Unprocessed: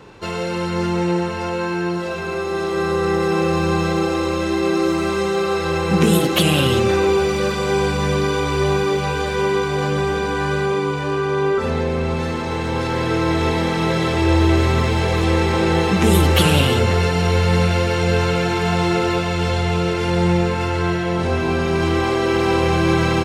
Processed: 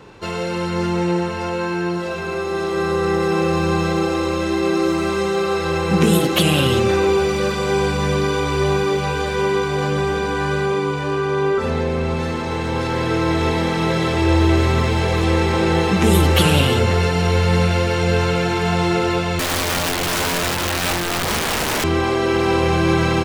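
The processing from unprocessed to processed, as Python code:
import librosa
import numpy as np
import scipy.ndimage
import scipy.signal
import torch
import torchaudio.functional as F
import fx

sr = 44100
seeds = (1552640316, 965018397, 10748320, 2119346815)

y = fx.overflow_wrap(x, sr, gain_db=15.5, at=(19.39, 21.84))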